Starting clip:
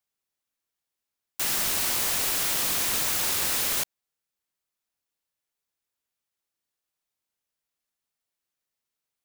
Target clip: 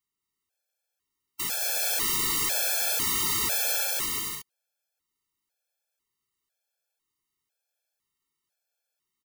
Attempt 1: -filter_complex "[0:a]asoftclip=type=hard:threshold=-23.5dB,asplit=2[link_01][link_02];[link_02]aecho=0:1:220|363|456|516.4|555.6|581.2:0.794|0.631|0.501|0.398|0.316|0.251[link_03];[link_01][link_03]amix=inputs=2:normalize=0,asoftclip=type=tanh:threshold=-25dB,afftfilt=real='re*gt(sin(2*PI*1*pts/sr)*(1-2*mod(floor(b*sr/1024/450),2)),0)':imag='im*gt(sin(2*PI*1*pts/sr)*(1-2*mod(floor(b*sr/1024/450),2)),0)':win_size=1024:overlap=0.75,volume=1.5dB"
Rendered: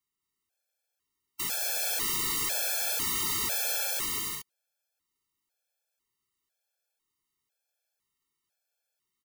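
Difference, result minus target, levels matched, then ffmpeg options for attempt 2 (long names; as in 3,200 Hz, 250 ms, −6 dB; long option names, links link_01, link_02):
soft clipping: distortion +8 dB
-filter_complex "[0:a]asoftclip=type=hard:threshold=-23.5dB,asplit=2[link_01][link_02];[link_02]aecho=0:1:220|363|456|516.4|555.6|581.2:0.794|0.631|0.501|0.398|0.316|0.251[link_03];[link_01][link_03]amix=inputs=2:normalize=0,asoftclip=type=tanh:threshold=-17.5dB,afftfilt=real='re*gt(sin(2*PI*1*pts/sr)*(1-2*mod(floor(b*sr/1024/450),2)),0)':imag='im*gt(sin(2*PI*1*pts/sr)*(1-2*mod(floor(b*sr/1024/450),2)),0)':win_size=1024:overlap=0.75,volume=1.5dB"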